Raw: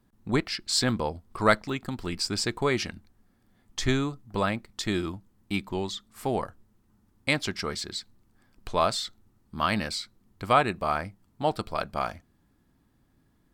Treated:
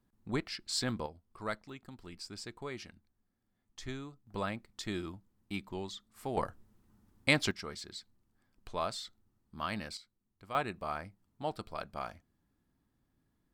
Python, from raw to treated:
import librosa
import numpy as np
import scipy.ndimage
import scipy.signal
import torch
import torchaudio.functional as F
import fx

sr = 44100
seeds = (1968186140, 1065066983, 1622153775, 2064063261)

y = fx.gain(x, sr, db=fx.steps((0.0, -9.0), (1.06, -16.5), (4.27, -9.5), (6.37, -1.5), (7.51, -11.0), (9.97, -20.0), (10.55, -10.5)))